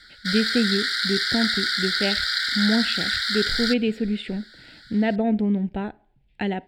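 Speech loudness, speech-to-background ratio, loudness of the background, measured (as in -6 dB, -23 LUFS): -26.0 LUFS, -3.5 dB, -22.5 LUFS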